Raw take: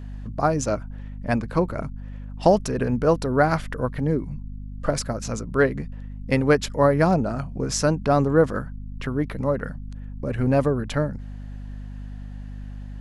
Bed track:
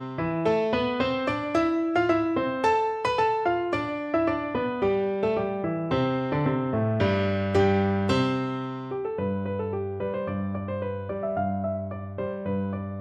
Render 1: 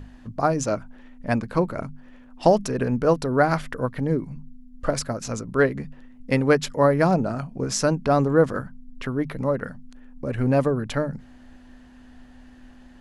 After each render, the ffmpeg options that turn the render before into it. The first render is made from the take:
ffmpeg -i in.wav -af "bandreject=frequency=50:width_type=h:width=6,bandreject=frequency=100:width_type=h:width=6,bandreject=frequency=150:width_type=h:width=6,bandreject=frequency=200:width_type=h:width=6" out.wav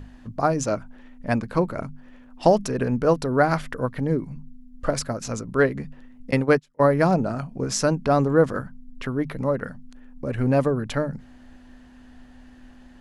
ffmpeg -i in.wav -filter_complex "[0:a]asettb=1/sr,asplit=3[link_01][link_02][link_03];[link_01]atrim=end=6.314[link_04];[link_02]atrim=start=6.31:end=6.93,asetpts=PTS-STARTPTS,afade=type=in:duration=0.004:curve=qsin,afade=type=out:start_time=0.616:duration=0.004:curve=qsin,agate=range=-30dB:threshold=-23dB:ratio=16:release=100:detection=peak[link_05];[link_03]atrim=start=6.926[link_06];[link_04][link_05]acrossfade=duration=0.004:curve1=hsin:curve2=qsin[link_07];[link_07][link_06]acrossfade=duration=0.004:curve1=qsin:curve2=hsin" out.wav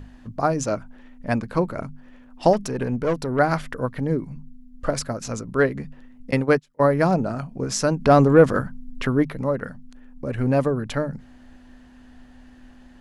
ffmpeg -i in.wav -filter_complex "[0:a]asettb=1/sr,asplit=3[link_01][link_02][link_03];[link_01]atrim=end=2.534[link_04];[link_02]atrim=start=2.53:end=3.39,asetpts=PTS-STARTPTS,afade=type=in:duration=0.004:curve=qsin,afade=type=out:start_time=0.856:duration=0.004:curve=qsin,aeval=exprs='(tanh(6.31*val(0)+0.3)-tanh(0.3))/6.31':channel_layout=same[link_05];[link_03]atrim=start=3.386[link_06];[link_04][link_05]acrossfade=duration=0.004:curve1=hsin:curve2=qsin[link_07];[link_07][link_06]acrossfade=duration=0.004:curve1=qsin:curve2=hsin,asettb=1/sr,asplit=3[link_08][link_09][link_10];[link_08]atrim=end=8.004[link_11];[link_09]atrim=start=8:end=9.25,asetpts=PTS-STARTPTS,afade=type=in:duration=0.004:curve=qsin,afade=type=out:start_time=1.246:duration=0.004:curve=qsin,acontrast=48[link_12];[link_10]atrim=start=9.246[link_13];[link_11][link_12]acrossfade=duration=0.004:curve1=hsin:curve2=qsin[link_14];[link_14][link_13]acrossfade=duration=0.004:curve1=qsin:curve2=hsin" out.wav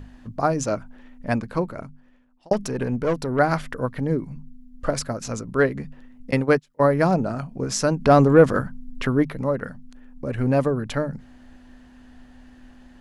ffmpeg -i in.wav -filter_complex "[0:a]asplit=2[link_01][link_02];[link_01]atrim=end=2.51,asetpts=PTS-STARTPTS,afade=type=out:start_time=1.3:duration=1.21[link_03];[link_02]atrim=start=2.51,asetpts=PTS-STARTPTS,afade=type=in:duration=0.004:curve=hsin[link_04];[link_03][link_04]concat=n=2:v=0:a=1" out.wav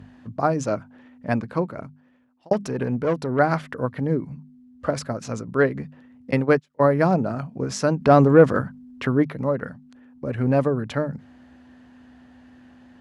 ffmpeg -i in.wav -af "highpass=frequency=76:width=0.5412,highpass=frequency=76:width=1.3066,aemphasis=mode=reproduction:type=cd" out.wav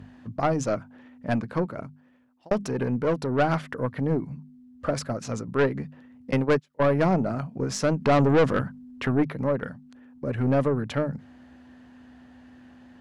ffmpeg -i in.wav -af "aeval=exprs='(tanh(5.62*val(0)+0.25)-tanh(0.25))/5.62':channel_layout=same" out.wav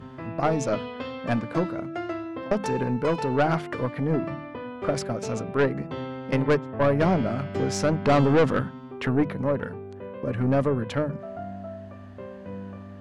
ffmpeg -i in.wav -i bed.wav -filter_complex "[1:a]volume=-9dB[link_01];[0:a][link_01]amix=inputs=2:normalize=0" out.wav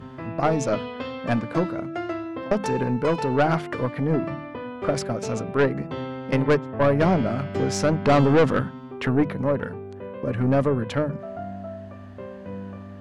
ffmpeg -i in.wav -af "volume=2dB" out.wav

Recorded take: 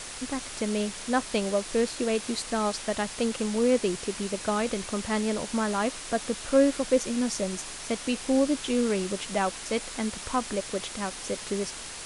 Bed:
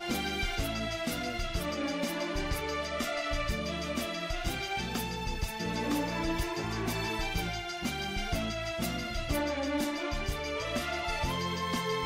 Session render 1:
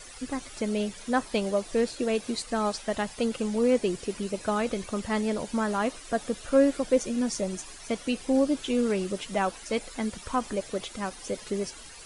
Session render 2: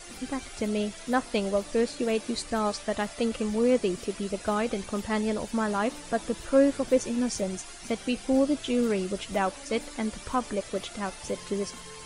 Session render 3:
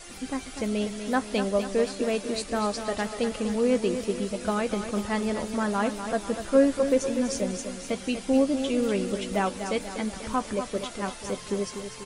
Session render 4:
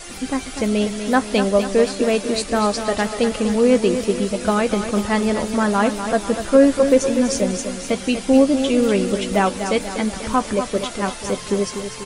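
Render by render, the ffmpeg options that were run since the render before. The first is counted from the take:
ffmpeg -i in.wav -af "afftdn=noise_reduction=13:noise_floor=-40" out.wav
ffmpeg -i in.wav -i bed.wav -filter_complex "[1:a]volume=-15dB[link_01];[0:a][link_01]amix=inputs=2:normalize=0" out.wav
ffmpeg -i in.wav -filter_complex "[0:a]asplit=2[link_01][link_02];[link_02]adelay=15,volume=-12.5dB[link_03];[link_01][link_03]amix=inputs=2:normalize=0,aecho=1:1:245|490|735|980|1225|1470:0.355|0.192|0.103|0.0559|0.0302|0.0163" out.wav
ffmpeg -i in.wav -af "volume=8.5dB,alimiter=limit=-2dB:level=0:latency=1" out.wav

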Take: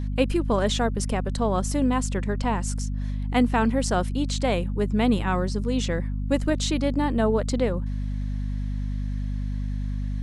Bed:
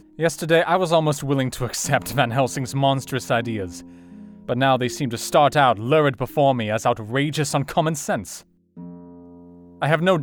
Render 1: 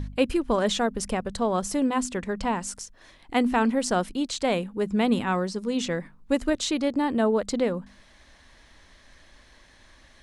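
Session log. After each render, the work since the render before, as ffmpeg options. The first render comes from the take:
ffmpeg -i in.wav -af "bandreject=frequency=50:width_type=h:width=4,bandreject=frequency=100:width_type=h:width=4,bandreject=frequency=150:width_type=h:width=4,bandreject=frequency=200:width_type=h:width=4,bandreject=frequency=250:width_type=h:width=4" out.wav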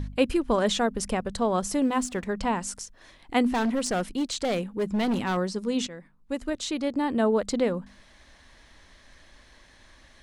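ffmpeg -i in.wav -filter_complex "[0:a]asettb=1/sr,asplit=3[link_01][link_02][link_03];[link_01]atrim=end=1.834[link_04];[link_02]atrim=start=1.83:end=2.25,asetpts=PTS-STARTPTS,afade=type=in:duration=0.004:curve=qsin,afade=type=out:start_time=0.416:duration=0.004:curve=qsin,aeval=exprs='sgn(val(0))*max(abs(val(0))-0.00266,0)':channel_layout=same[link_05];[link_03]atrim=start=2.246[link_06];[link_04][link_05]acrossfade=duration=0.004:curve1=hsin:curve2=qsin[link_07];[link_07][link_06]acrossfade=duration=0.004:curve1=qsin:curve2=hsin,asettb=1/sr,asplit=3[link_08][link_09][link_10];[link_08]atrim=end=3.484[link_11];[link_09]atrim=start=3.48:end=5.37,asetpts=PTS-STARTPTS,afade=type=in:duration=0.004:curve=qsin,afade=type=out:start_time=1.886:duration=0.004:curve=qsin,asoftclip=type=hard:threshold=-22dB[link_12];[link_10]atrim=start=5.366[link_13];[link_11][link_12]acrossfade=duration=0.004:curve1=hsin:curve2=qsin[link_14];[link_14][link_13]acrossfade=duration=0.004:curve1=qsin:curve2=hsin,asplit=2[link_15][link_16];[link_15]atrim=end=5.87,asetpts=PTS-STARTPTS,afade=type=out:start_time=5.866:duration=0.004:curve=hsin:silence=0.177828[link_17];[link_16]atrim=start=5.87,asetpts=PTS-STARTPTS,afade=type=in:duration=1.47:silence=0.177828[link_18];[link_17][link_18]concat=n=2:v=0:a=1" out.wav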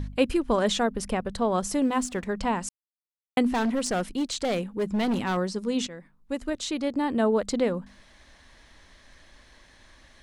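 ffmpeg -i in.wav -filter_complex "[0:a]asettb=1/sr,asplit=3[link_01][link_02][link_03];[link_01]atrim=end=0.834[link_04];[link_02]atrim=start=0.83:end=1.52,asetpts=PTS-STARTPTS,afade=type=in:duration=0.004:curve=qsin,afade=type=out:start_time=0.686:duration=0.004:curve=qsin,equalizer=frequency=7000:width_type=o:width=0.99:gain=-5[link_05];[link_03]atrim=start=1.516[link_06];[link_04][link_05]acrossfade=duration=0.004:curve1=hsin:curve2=qsin[link_07];[link_07][link_06]acrossfade=duration=0.004:curve1=qsin:curve2=hsin,asplit=3[link_08][link_09][link_10];[link_08]atrim=end=2.69,asetpts=PTS-STARTPTS,afade=type=out:start_time=2.686:duration=0.004:curve=hsin[link_11];[link_09]atrim=start=2.69:end=3.37,asetpts=PTS-STARTPTS,volume=0[link_12];[link_10]atrim=start=3.37,asetpts=PTS-STARTPTS,afade=type=in:duration=0.004:curve=hsin[link_13];[link_11][link_12][link_13]concat=n=3:v=0:a=1" out.wav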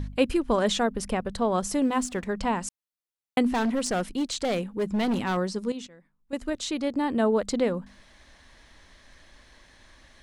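ffmpeg -i in.wav -filter_complex "[0:a]asplit=3[link_01][link_02][link_03];[link_01]atrim=end=5.722[link_04];[link_02]atrim=start=5.718:end=6.332,asetpts=PTS-STARTPTS,volume=-10.5dB[link_05];[link_03]atrim=start=6.328[link_06];[link_04][link_05]acrossfade=duration=0.004:curve1=hsin:curve2=hsin[link_07];[link_07][link_06]acrossfade=duration=0.004:curve1=hsin:curve2=hsin" out.wav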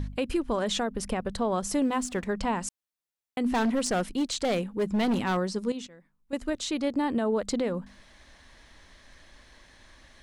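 ffmpeg -i in.wav -af "alimiter=limit=-18.5dB:level=0:latency=1:release=125" out.wav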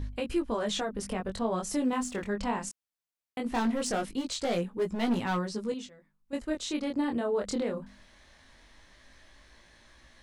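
ffmpeg -i in.wav -af "flanger=delay=17:depth=8:speed=0.2" out.wav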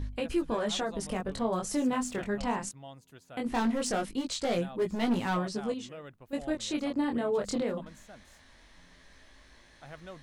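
ffmpeg -i in.wav -i bed.wav -filter_complex "[1:a]volume=-28.5dB[link_01];[0:a][link_01]amix=inputs=2:normalize=0" out.wav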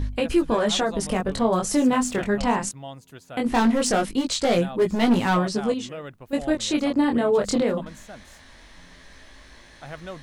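ffmpeg -i in.wav -af "volume=9dB" out.wav

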